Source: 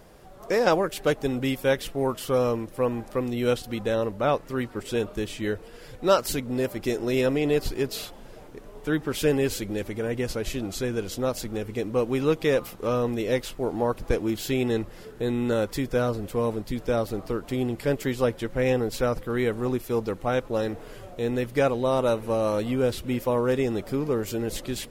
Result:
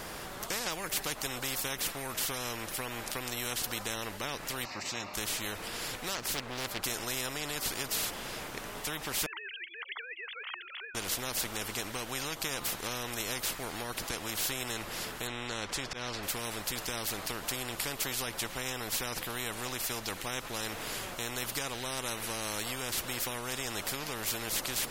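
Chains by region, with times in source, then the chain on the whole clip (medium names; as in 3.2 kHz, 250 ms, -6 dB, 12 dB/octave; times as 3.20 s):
4.65–5.14 s: band-pass 190–6300 Hz + static phaser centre 2.2 kHz, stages 8 + tape noise reduction on one side only encoder only
6.15–6.84 s: treble shelf 4.4 kHz -11.5 dB + loudspeaker Doppler distortion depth 0.44 ms
9.26–10.95 s: formants replaced by sine waves + high-pass 1.4 kHz 24 dB/octave
15.27–16.23 s: low-pass 5 kHz + slow attack 211 ms
whole clip: compression, threshold -24 dBFS; spectrum-flattening compressor 4:1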